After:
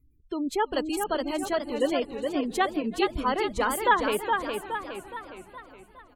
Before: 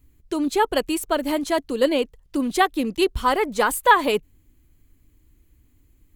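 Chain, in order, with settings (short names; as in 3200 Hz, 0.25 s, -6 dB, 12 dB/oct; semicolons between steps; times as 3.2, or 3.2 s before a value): frequency-shifting echo 0.331 s, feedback 62%, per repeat -58 Hz, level -21.5 dB; spectral gate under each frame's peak -30 dB strong; warbling echo 0.416 s, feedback 49%, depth 108 cents, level -5 dB; gain -6.5 dB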